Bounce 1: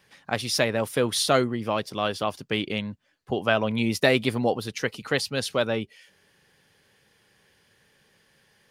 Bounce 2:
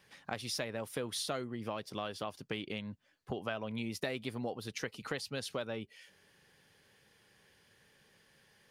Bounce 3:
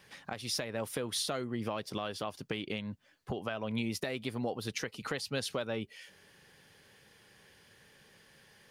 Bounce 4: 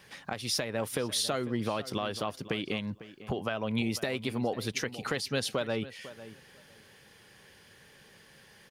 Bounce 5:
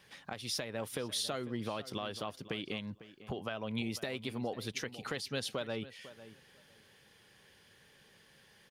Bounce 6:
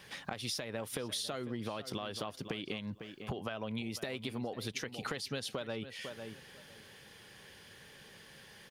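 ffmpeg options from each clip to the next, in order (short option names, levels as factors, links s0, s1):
-af "acompressor=threshold=0.0224:ratio=4,volume=0.668"
-af "alimiter=level_in=1.58:limit=0.0631:level=0:latency=1:release=285,volume=0.631,volume=1.88"
-filter_complex "[0:a]asplit=2[s0][s1];[s1]adelay=500,lowpass=f=2700:p=1,volume=0.178,asplit=2[s2][s3];[s3]adelay=500,lowpass=f=2700:p=1,volume=0.19[s4];[s0][s2][s4]amix=inputs=3:normalize=0,volume=1.58"
-af "equalizer=f=3400:w=2.8:g=3,volume=0.473"
-af "acompressor=threshold=0.00708:ratio=6,volume=2.37"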